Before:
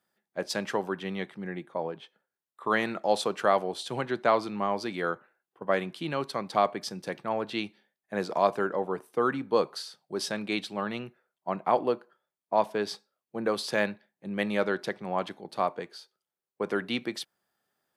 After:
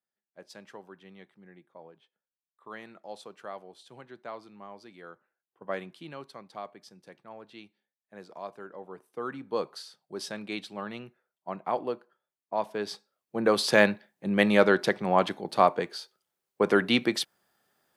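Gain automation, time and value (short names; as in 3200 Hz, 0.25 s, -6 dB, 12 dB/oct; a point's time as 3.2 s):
5.11 s -17 dB
5.72 s -7 dB
6.61 s -16 dB
8.58 s -16 dB
9.63 s -5 dB
12.6 s -5 dB
13.69 s +7 dB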